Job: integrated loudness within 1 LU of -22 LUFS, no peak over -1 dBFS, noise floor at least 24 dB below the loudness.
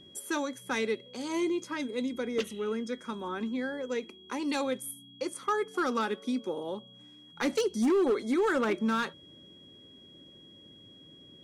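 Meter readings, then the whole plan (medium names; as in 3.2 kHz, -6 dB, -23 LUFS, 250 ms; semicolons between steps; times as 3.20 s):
clipped samples 1.2%; clipping level -22.0 dBFS; steady tone 3.3 kHz; tone level -53 dBFS; loudness -31.5 LUFS; peak level -22.0 dBFS; loudness target -22.0 LUFS
-> clip repair -22 dBFS; band-stop 3.3 kHz, Q 30; trim +9.5 dB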